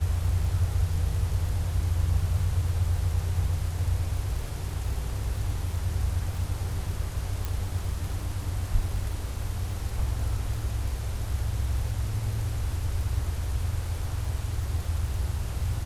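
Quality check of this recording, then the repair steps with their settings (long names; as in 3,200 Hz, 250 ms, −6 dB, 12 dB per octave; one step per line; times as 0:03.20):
surface crackle 33 per second −35 dBFS
0:07.45: click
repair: click removal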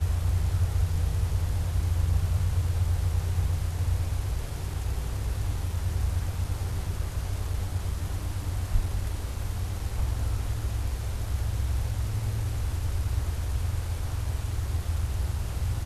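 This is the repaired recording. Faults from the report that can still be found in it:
none of them is left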